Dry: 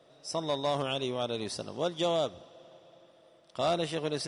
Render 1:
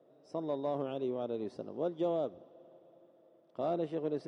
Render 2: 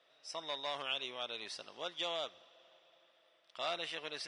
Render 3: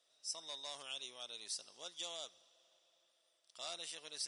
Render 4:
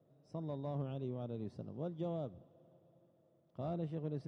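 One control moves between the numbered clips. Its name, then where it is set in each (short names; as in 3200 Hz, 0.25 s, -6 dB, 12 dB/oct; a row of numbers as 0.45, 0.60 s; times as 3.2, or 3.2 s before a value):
band-pass, frequency: 340, 2400, 7800, 130 Hz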